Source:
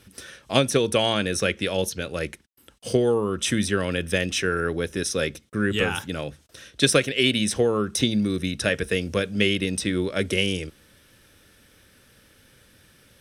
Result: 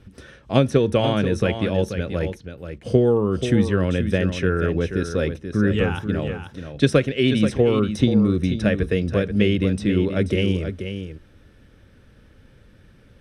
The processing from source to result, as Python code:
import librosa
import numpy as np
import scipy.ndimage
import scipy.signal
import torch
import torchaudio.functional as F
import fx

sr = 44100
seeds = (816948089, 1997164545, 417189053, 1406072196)

y = fx.lowpass(x, sr, hz=4000.0, slope=6)
y = fx.tilt_eq(y, sr, slope=-2.5)
y = y + 10.0 ** (-9.0 / 20.0) * np.pad(y, (int(483 * sr / 1000.0), 0))[:len(y)]